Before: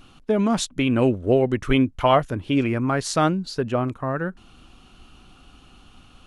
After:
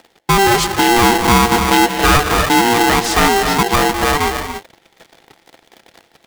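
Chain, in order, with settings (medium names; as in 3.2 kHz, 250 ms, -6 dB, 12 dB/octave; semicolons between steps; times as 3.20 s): gated-style reverb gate 320 ms rising, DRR 8.5 dB; waveshaping leveller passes 3; high-pass 71 Hz; treble shelf 8.8 kHz -10 dB; polarity switched at an audio rate 590 Hz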